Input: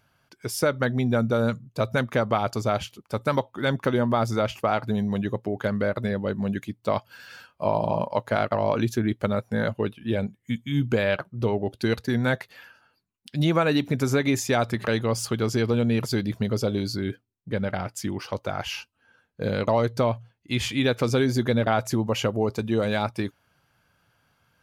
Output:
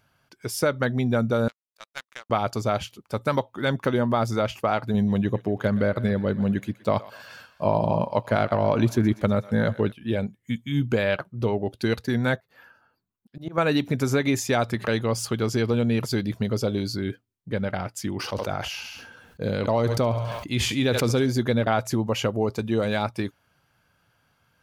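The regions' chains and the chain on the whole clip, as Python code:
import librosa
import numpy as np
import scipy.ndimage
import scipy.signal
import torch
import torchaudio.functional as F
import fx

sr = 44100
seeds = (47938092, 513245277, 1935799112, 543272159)

y = fx.chain(x, sr, fx.highpass(hz=1400.0, slope=12),
    fx.power_curve(exponent=2.0), at=(1.48, 2.3))
y = fx.chain(y, sr, fx.low_shelf(hz=340.0, db=5.0),
    fx.echo_thinned(ms=122, feedback_pct=65, hz=650.0, wet_db=-16.5), at=(4.94, 9.92))
y = fx.chain(y, sr, fx.band_shelf(hz=4800.0, db=-9.0, octaves=2.8),
    fx.hum_notches(base_hz=50, count=3),
    fx.auto_swell(attack_ms=215.0), at=(12.36, 13.58))
y = fx.chain(y, sr, fx.peak_eq(hz=1500.0, db=-3.0, octaves=2.5),
    fx.echo_thinned(ms=69, feedback_pct=42, hz=540.0, wet_db=-16.5),
    fx.sustainer(db_per_s=35.0), at=(18.16, 21.29))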